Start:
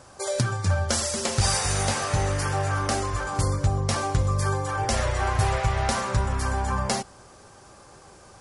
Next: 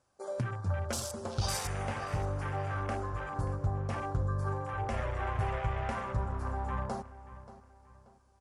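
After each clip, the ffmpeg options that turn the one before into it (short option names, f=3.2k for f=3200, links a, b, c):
-filter_complex "[0:a]afwtdn=0.0282,asplit=2[a][b];[b]adelay=582,lowpass=f=4.5k:p=1,volume=-15.5dB,asplit=2[c][d];[d]adelay=582,lowpass=f=4.5k:p=1,volume=0.37,asplit=2[e][f];[f]adelay=582,lowpass=f=4.5k:p=1,volume=0.37[g];[a][c][e][g]amix=inputs=4:normalize=0,volume=-9dB"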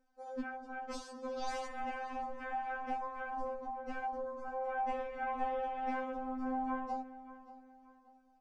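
-af "lowpass=7.3k,aemphasis=mode=reproduction:type=bsi,afftfilt=real='re*3.46*eq(mod(b,12),0)':imag='im*3.46*eq(mod(b,12),0)':win_size=2048:overlap=0.75,volume=-2.5dB"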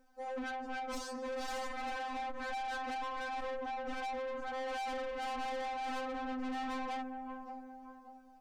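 -af "aeval=exprs='(tanh(200*val(0)+0.15)-tanh(0.15))/200':c=same,volume=9dB"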